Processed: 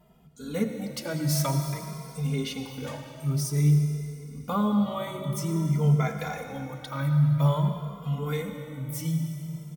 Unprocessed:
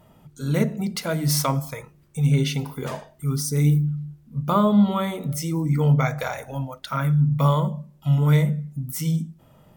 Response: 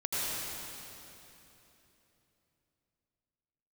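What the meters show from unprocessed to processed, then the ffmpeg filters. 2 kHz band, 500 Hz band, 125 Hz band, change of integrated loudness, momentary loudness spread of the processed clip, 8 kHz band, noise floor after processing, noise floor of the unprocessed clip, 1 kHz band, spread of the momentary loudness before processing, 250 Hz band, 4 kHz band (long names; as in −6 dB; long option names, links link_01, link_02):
−6.0 dB, −5.5 dB, −4.5 dB, −5.0 dB, 14 LU, −5.0 dB, −45 dBFS, −55 dBFS, −6.5 dB, 13 LU, −5.0 dB, −5.0 dB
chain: -filter_complex "[0:a]equalizer=frequency=1200:width_type=o:width=0.77:gain=-2,asplit=2[link_01][link_02];[1:a]atrim=start_sample=2205[link_03];[link_02][link_03]afir=irnorm=-1:irlink=0,volume=-12dB[link_04];[link_01][link_04]amix=inputs=2:normalize=0,asplit=2[link_05][link_06];[link_06]adelay=2.5,afreqshift=0.51[link_07];[link_05][link_07]amix=inputs=2:normalize=1,volume=-4.5dB"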